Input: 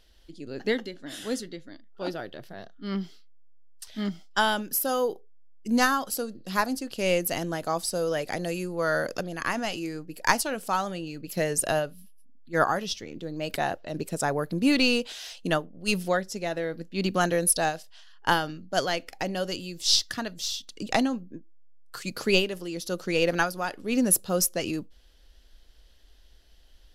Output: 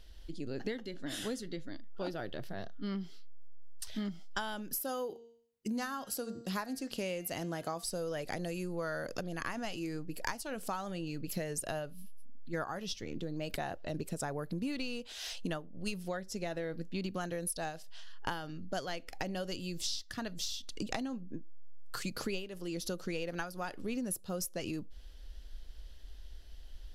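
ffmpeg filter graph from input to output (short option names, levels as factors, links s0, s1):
-filter_complex "[0:a]asettb=1/sr,asplit=3[s0][s1][s2];[s0]atrim=end=4.814[s3];[s1]atrim=start=4.81:end=7.84,asetpts=PTS-STARTPTS,afade=t=in:d=0.004:c=qsin,afade=t=out:st=3.026:d=0.004:c=qsin,highpass=f=98:p=1,bandreject=f=232.4:t=h:w=4,bandreject=f=464.8:t=h:w=4,bandreject=f=697.2:t=h:w=4,bandreject=f=929.6:t=h:w=4,bandreject=f=1162:t=h:w=4,bandreject=f=1394.4:t=h:w=4,bandreject=f=1626.8:t=h:w=4,bandreject=f=1859.2:t=h:w=4,bandreject=f=2091.6:t=h:w=4,bandreject=f=2324:t=h:w=4,bandreject=f=2556.4:t=h:w=4,bandreject=f=2788.8:t=h:w=4,bandreject=f=3021.2:t=h:w=4,bandreject=f=3253.6:t=h:w=4,bandreject=f=3486:t=h:w=4,bandreject=f=3718.4:t=h:w=4,bandreject=f=3950.8:t=h:w=4,bandreject=f=4183.2:t=h:w=4,bandreject=f=4415.6:t=h:w=4,bandreject=f=4648:t=h:w=4,bandreject=f=4880.4:t=h:w=4,bandreject=f=5112.8:t=h:w=4,bandreject=f=5345.2:t=h:w=4,bandreject=f=5577.6:t=h:w=4,bandreject=f=5810:t=h:w=4,bandreject=f=6042.4:t=h:w=4,bandreject=f=6274.8:t=h:w=4,bandreject=f=6507.2:t=h:w=4,bandreject=f=6739.6:t=h:w=4,bandreject=f=6972:t=h:w=4,bandreject=f=7204.4:t=h:w=4,bandreject=f=7436.8:t=h:w=4,bandreject=f=7669.2:t=h:w=4,bandreject=f=7901.6:t=h:w=4[s4];[s2]atrim=start=7.836[s5];[s3][s4]acrossfade=d=0.004:c1=hsin:c2=qsin[s6];[s6][s5]acrossfade=d=0.004:c1=qsin:c2=hsin,lowshelf=f=120:g=9.5,acompressor=threshold=0.02:ratio=10"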